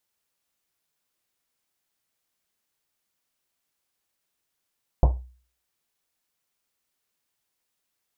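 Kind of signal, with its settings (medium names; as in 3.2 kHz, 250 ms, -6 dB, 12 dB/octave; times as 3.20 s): Risset drum, pitch 62 Hz, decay 0.44 s, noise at 610 Hz, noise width 650 Hz, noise 15%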